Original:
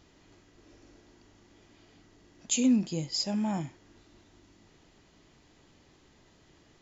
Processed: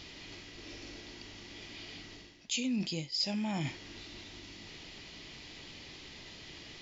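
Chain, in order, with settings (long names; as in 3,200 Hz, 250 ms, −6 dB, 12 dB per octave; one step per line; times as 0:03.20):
flat-topped bell 3,300 Hz +11 dB
reversed playback
downward compressor 5 to 1, threshold −41 dBFS, peak gain reduction 21 dB
reversed playback
level +7.5 dB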